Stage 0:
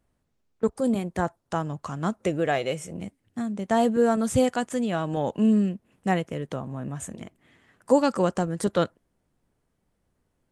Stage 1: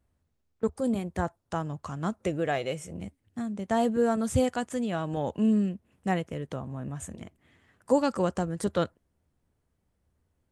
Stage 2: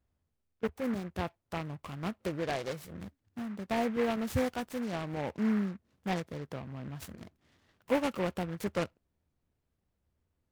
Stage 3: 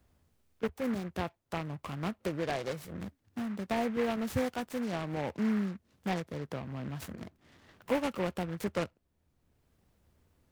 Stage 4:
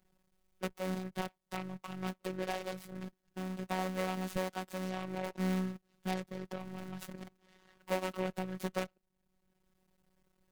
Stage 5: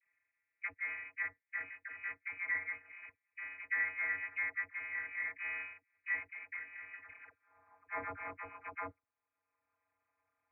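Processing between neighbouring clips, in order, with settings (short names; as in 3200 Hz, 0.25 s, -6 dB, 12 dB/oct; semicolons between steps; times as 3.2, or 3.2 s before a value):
bell 77 Hz +10.5 dB 0.75 oct; gain -4 dB
noise-modulated delay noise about 1300 Hz, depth 0.087 ms; gain -5.5 dB
three-band squash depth 40%
cycle switcher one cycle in 3, muted; robotiser 186 Hz
band-pass sweep 780 Hz -> 1700 Hz, 7.02–7.64; inverted band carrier 2700 Hz; dispersion lows, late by 71 ms, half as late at 800 Hz; gain +5.5 dB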